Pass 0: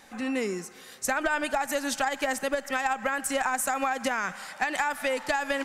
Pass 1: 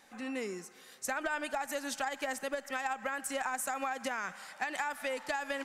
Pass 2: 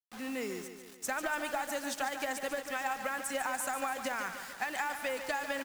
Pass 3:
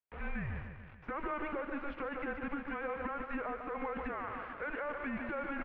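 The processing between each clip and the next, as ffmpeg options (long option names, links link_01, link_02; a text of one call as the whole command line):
ffmpeg -i in.wav -af "lowshelf=frequency=130:gain=-8,volume=-7.5dB" out.wav
ffmpeg -i in.wav -filter_complex "[0:a]acrusher=bits=7:mix=0:aa=0.000001,asplit=2[link_01][link_02];[link_02]aecho=0:1:145|290|435|580|725|870|1015:0.335|0.188|0.105|0.0588|0.0329|0.0184|0.0103[link_03];[link_01][link_03]amix=inputs=2:normalize=0" out.wav
ffmpeg -i in.wav -af "alimiter=level_in=6dB:limit=-24dB:level=0:latency=1:release=54,volume=-6dB,aeval=exprs='0.0316*(cos(1*acos(clip(val(0)/0.0316,-1,1)))-cos(1*PI/2))+0.00316*(cos(6*acos(clip(val(0)/0.0316,-1,1)))-cos(6*PI/2))':channel_layout=same,highpass=frequency=180:width_type=q:width=0.5412,highpass=frequency=180:width_type=q:width=1.307,lowpass=frequency=2700:width_type=q:width=0.5176,lowpass=frequency=2700:width_type=q:width=0.7071,lowpass=frequency=2700:width_type=q:width=1.932,afreqshift=-290,volume=1.5dB" out.wav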